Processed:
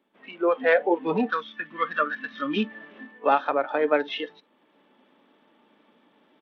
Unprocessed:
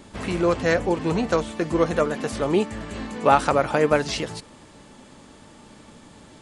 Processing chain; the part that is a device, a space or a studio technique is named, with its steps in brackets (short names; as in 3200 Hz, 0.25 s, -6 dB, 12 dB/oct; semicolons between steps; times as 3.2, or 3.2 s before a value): 1.3–2.64 band shelf 560 Hz -12 dB; spectral noise reduction 18 dB; Bluetooth headset (HPF 230 Hz 24 dB/oct; AGC gain up to 11.5 dB; downsampling 8000 Hz; gain -5 dB; SBC 64 kbps 32000 Hz)